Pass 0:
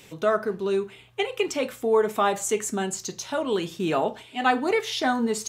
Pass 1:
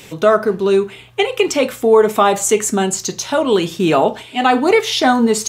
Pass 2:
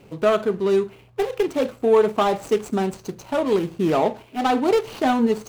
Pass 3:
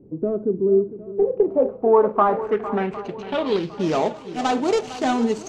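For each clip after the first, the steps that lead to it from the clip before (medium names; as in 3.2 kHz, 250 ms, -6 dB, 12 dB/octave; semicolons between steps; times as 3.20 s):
dynamic bell 1.7 kHz, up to -4 dB, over -43 dBFS, Q 4.2; loudness maximiser +12 dB; trim -1 dB
median filter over 25 samples; trim -5 dB
low-pass sweep 330 Hz -> 6.9 kHz, 0.86–4.08 s; shuffle delay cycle 757 ms, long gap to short 1.5:1, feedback 37%, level -14 dB; trim -2 dB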